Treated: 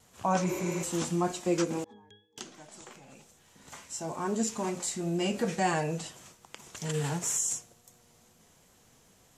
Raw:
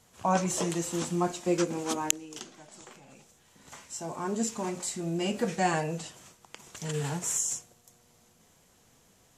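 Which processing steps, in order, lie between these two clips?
1.84–2.38 octave resonator G#, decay 0.41 s; in parallel at -1.5 dB: limiter -22 dBFS, peak gain reduction 8 dB; on the sum: wow and flutter 28 cents; 0.51–0.81 spectral repair 220–11000 Hz before; gain -4.5 dB

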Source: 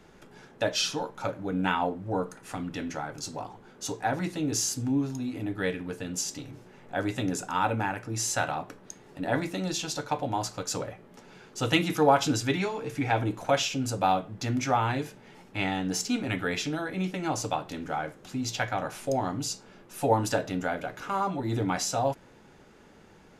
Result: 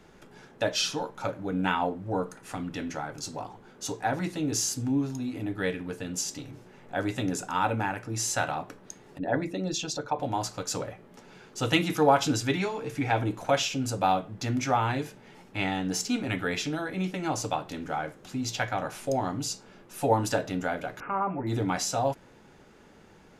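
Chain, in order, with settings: 9.18–10.2 formant sharpening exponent 1.5; 21–21.47 elliptic low-pass 2500 Hz, stop band 40 dB

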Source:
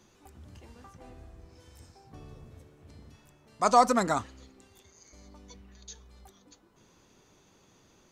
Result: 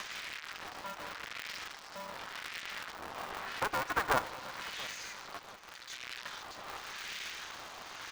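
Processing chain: switching spikes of -20.5 dBFS; 2.92–3.74 tilt shelf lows +8 dB, about 1100 Hz; compressor 10:1, threshold -30 dBFS, peak gain reduction 16 dB; Chebyshev band-pass 490–4700 Hz, order 2; 5.39–5.9 power-law curve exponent 2; analogue delay 0.117 s, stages 2048, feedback 82%, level -22 dB; LFO band-pass sine 0.87 Hz 890–2000 Hz; feedback echo 0.688 s, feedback 51%, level -18.5 dB; polarity switched at an audio rate 200 Hz; gain +12.5 dB

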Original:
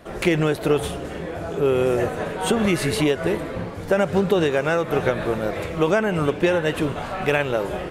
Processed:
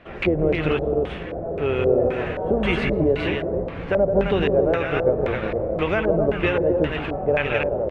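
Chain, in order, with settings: octaver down 2 oct, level -4 dB; tapped delay 0.167/0.265 s -7/-5 dB; LFO low-pass square 1.9 Hz 590–2600 Hz; gain -4.5 dB

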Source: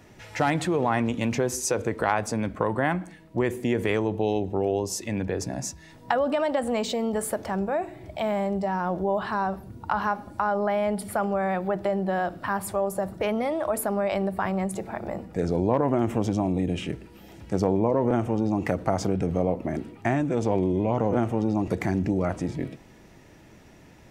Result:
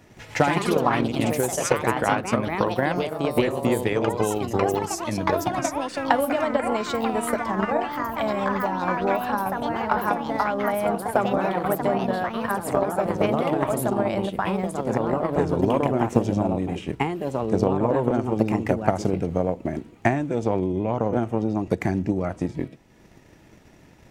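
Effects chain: echoes that change speed 0.138 s, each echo +3 st, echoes 3; transient shaper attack +8 dB, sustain -5 dB; gain -1 dB

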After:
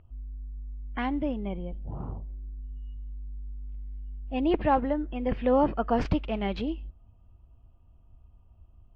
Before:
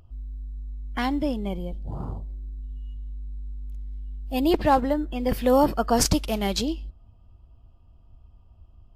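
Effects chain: Chebyshev low-pass 2700 Hz, order 3; gain -3.5 dB

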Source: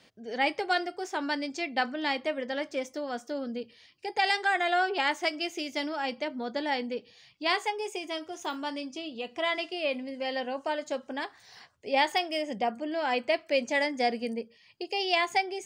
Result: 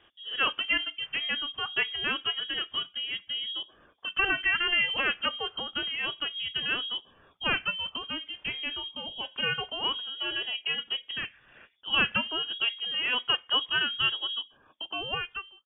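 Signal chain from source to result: ending faded out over 1.00 s; inverted band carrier 3500 Hz

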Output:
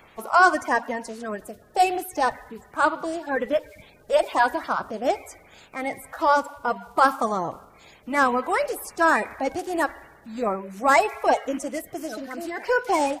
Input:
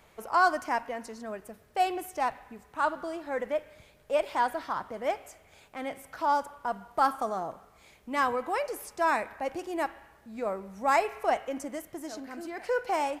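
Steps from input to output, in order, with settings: bin magnitudes rounded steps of 30 dB; gain +7.5 dB

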